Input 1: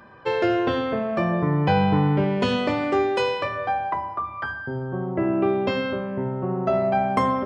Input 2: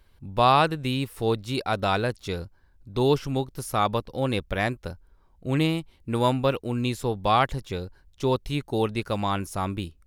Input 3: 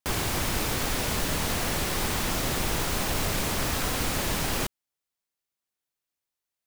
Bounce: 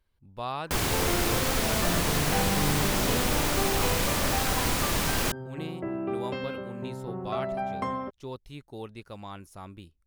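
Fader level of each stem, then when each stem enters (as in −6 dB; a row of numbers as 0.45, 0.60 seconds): −10.0, −15.0, +1.0 decibels; 0.65, 0.00, 0.65 seconds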